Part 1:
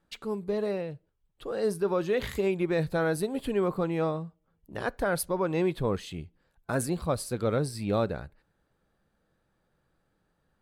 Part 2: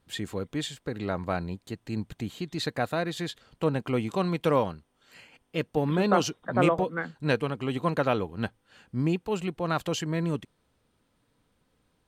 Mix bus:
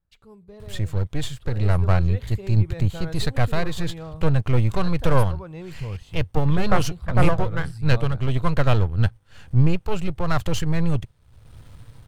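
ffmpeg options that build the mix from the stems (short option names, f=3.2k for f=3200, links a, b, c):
-filter_complex "[0:a]volume=-14.5dB[a];[1:a]aeval=exprs='if(lt(val(0),0),0.251*val(0),val(0))':c=same,acompressor=mode=upward:threshold=-41dB:ratio=2.5,adelay=600,volume=1dB[b];[a][b]amix=inputs=2:normalize=0,lowshelf=f=160:t=q:w=1.5:g=14,dynaudnorm=f=160:g=13:m=5dB"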